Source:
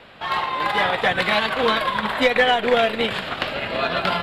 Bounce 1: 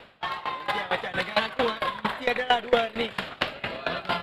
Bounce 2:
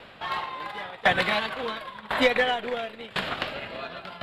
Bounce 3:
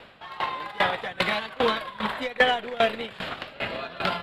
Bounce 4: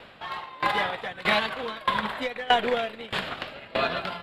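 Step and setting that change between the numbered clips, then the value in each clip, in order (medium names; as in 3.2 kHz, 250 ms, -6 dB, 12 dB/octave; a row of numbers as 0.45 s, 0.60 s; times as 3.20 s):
sawtooth tremolo in dB, rate: 4.4 Hz, 0.95 Hz, 2.5 Hz, 1.6 Hz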